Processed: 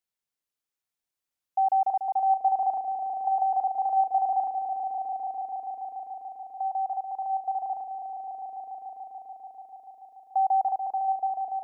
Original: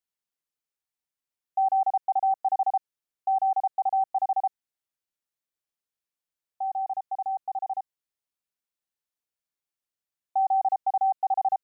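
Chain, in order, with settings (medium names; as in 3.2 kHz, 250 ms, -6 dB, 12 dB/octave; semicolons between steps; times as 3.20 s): fade out at the end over 1.02 s; echo with a slow build-up 145 ms, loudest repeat 5, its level -10 dB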